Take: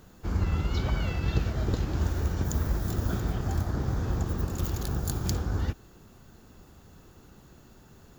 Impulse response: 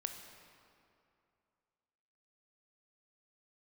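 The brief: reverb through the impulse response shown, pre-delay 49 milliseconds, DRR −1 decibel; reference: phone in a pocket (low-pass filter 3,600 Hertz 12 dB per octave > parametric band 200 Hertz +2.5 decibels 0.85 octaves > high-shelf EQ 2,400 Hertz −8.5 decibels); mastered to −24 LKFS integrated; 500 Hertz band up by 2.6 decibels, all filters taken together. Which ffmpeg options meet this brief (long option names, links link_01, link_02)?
-filter_complex "[0:a]equalizer=frequency=500:width_type=o:gain=3.5,asplit=2[link_01][link_02];[1:a]atrim=start_sample=2205,adelay=49[link_03];[link_02][link_03]afir=irnorm=-1:irlink=0,volume=2dB[link_04];[link_01][link_04]amix=inputs=2:normalize=0,lowpass=3600,equalizer=frequency=200:width_type=o:width=0.85:gain=2.5,highshelf=frequency=2400:gain=-8.5,volume=2dB"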